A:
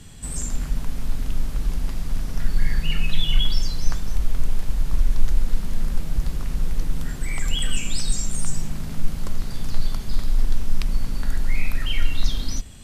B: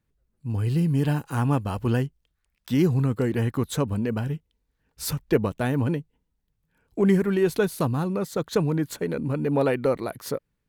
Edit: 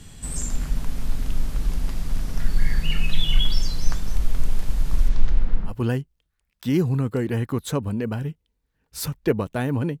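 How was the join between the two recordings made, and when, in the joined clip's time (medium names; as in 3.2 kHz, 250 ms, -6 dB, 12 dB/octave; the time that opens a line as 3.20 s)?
A
5.08–5.75 s: low-pass 6.3 kHz -> 1.2 kHz
5.70 s: go over to B from 1.75 s, crossfade 0.10 s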